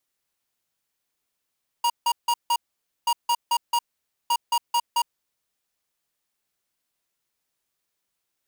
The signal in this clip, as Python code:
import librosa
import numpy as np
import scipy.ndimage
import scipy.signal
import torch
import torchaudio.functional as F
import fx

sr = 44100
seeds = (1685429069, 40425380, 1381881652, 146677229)

y = fx.beep_pattern(sr, wave='square', hz=949.0, on_s=0.06, off_s=0.16, beeps=4, pause_s=0.51, groups=3, level_db=-21.0)